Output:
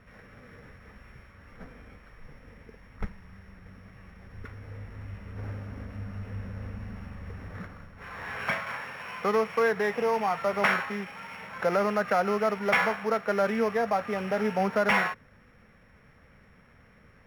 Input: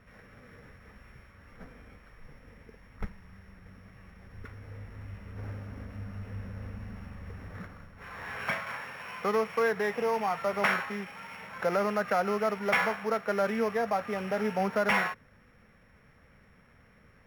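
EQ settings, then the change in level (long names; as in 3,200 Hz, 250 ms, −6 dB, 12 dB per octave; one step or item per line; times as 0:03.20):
high-shelf EQ 9,500 Hz −5 dB
+2.5 dB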